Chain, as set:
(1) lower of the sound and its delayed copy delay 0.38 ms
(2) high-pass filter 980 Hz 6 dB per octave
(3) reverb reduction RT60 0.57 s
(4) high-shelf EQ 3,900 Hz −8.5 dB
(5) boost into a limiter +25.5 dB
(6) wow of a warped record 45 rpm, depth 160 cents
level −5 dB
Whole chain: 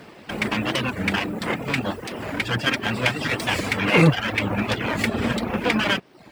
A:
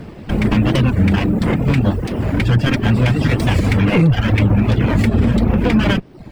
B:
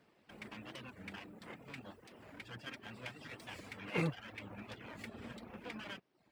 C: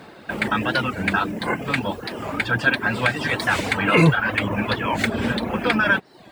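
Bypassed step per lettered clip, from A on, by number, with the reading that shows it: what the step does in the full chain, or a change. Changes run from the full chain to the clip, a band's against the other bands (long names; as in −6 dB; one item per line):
2, 125 Hz band +11.5 dB
5, change in crest factor +6.5 dB
1, 2 kHz band +3.0 dB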